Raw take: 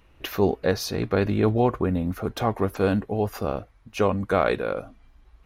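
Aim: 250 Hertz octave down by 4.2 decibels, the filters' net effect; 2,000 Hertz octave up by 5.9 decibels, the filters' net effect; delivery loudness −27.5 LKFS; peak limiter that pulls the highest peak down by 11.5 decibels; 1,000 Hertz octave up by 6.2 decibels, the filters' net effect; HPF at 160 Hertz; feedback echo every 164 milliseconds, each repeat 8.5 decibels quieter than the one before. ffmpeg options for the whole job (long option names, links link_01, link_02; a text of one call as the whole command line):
ffmpeg -i in.wav -af "highpass=160,equalizer=frequency=250:width_type=o:gain=-5,equalizer=frequency=1000:width_type=o:gain=7.5,equalizer=frequency=2000:width_type=o:gain=5,alimiter=limit=-14dB:level=0:latency=1,aecho=1:1:164|328|492|656:0.376|0.143|0.0543|0.0206,volume=0.5dB" out.wav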